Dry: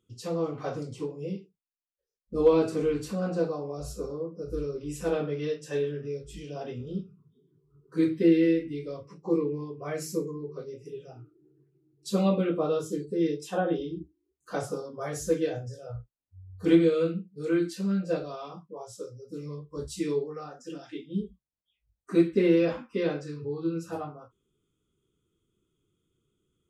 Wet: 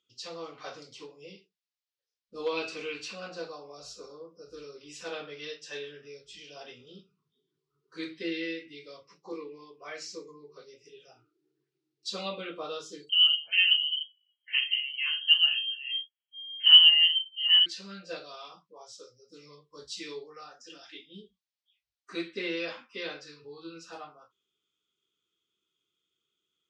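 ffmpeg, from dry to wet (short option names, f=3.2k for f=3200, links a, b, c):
-filter_complex "[0:a]asettb=1/sr,asplit=3[a][b][c];[a]atrim=end=2.574[d];[b]atrim=start=2.57:end=3.28,asetpts=PTS-STARTPTS,afade=t=in:d=0.004:c=qsin,afade=t=out:st=0.706:d=0.004:c=qsin,equalizer=f=2.6k:t=o:w=0.36:g=11[e];[c]atrim=start=3.276[f];[d][e]acrossfade=d=0.004:c1=hsin:c2=qsin[g];[g][f]acrossfade=d=0.004:c1=qsin:c2=hsin,asettb=1/sr,asplit=3[h][i][j];[h]atrim=end=9.324[k];[i]atrim=start=9.32:end=10.29,asetpts=PTS-STARTPTS,afade=t=in:d=0.004:c=qsin,afade=t=out:st=0.966:d=0.004:c=qsin,highpass=190,lowpass=7k[l];[j]atrim=start=10.286[m];[k][l]acrossfade=d=0.004:c1=hsin:c2=qsin[n];[n][m]acrossfade=d=0.004:c1=qsin:c2=hsin,asettb=1/sr,asplit=3[o][p][q];[o]atrim=end=13.094[r];[p]atrim=start=13.09:end=17.66,asetpts=PTS-STARTPTS,afade=t=in:d=0.004:c=qsin,afade=t=out:st=4.566:d=0.004:c=qsin,lowpass=f=2.8k:t=q:w=0.5098,lowpass=f=2.8k:t=q:w=0.6013,lowpass=f=2.8k:t=q:w=0.9,lowpass=f=2.8k:t=q:w=2.563,afreqshift=-3300[s];[q]atrim=start=17.656[t];[r][s]acrossfade=d=0.004:c1=hsin:c2=qsin[u];[u][t]acrossfade=d=0.004:c1=qsin:c2=hsin,lowpass=f=4.8k:w=0.5412,lowpass=f=4.8k:w=1.3066,aderivative,volume=12dB"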